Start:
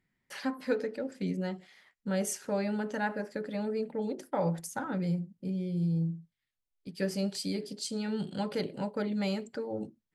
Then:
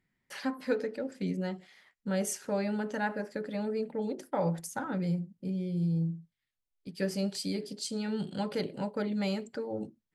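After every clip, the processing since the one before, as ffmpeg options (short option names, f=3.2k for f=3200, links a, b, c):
-af anull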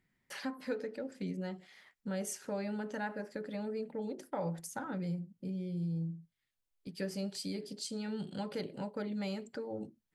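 -af "acompressor=threshold=-48dB:ratio=1.5,volume=1dB"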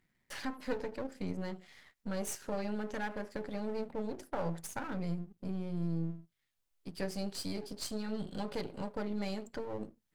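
-af "aeval=exprs='if(lt(val(0),0),0.251*val(0),val(0))':c=same,volume=4dB"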